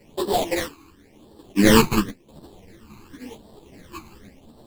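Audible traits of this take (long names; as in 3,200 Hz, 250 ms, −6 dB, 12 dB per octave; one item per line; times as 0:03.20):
aliases and images of a low sample rate 1,400 Hz, jitter 20%
phaser sweep stages 12, 0.93 Hz, lowest notch 570–2,200 Hz
sample-and-hold tremolo
a shimmering, thickened sound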